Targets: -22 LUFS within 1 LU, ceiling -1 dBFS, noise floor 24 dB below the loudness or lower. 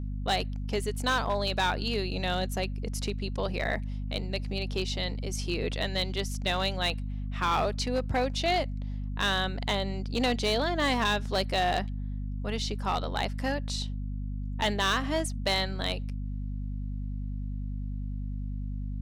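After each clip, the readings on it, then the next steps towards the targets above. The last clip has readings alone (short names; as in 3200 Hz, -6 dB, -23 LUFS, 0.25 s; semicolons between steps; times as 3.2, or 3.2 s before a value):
clipped 0.7%; flat tops at -20.5 dBFS; hum 50 Hz; harmonics up to 250 Hz; hum level -31 dBFS; loudness -30.5 LUFS; peak -20.5 dBFS; loudness target -22.0 LUFS
-> clip repair -20.5 dBFS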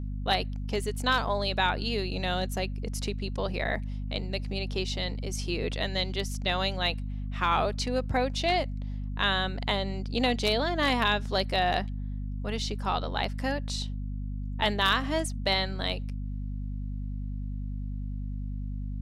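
clipped 0.0%; hum 50 Hz; harmonics up to 250 Hz; hum level -31 dBFS
-> de-hum 50 Hz, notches 5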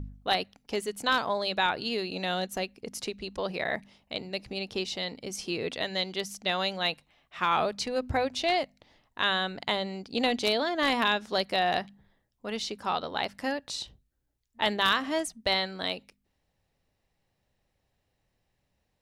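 hum none; loudness -29.5 LUFS; peak -10.5 dBFS; loudness target -22.0 LUFS
-> gain +7.5 dB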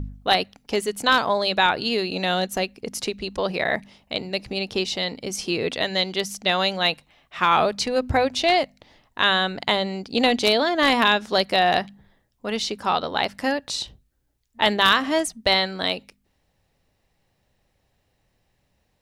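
loudness -22.0 LUFS; peak -3.0 dBFS; noise floor -70 dBFS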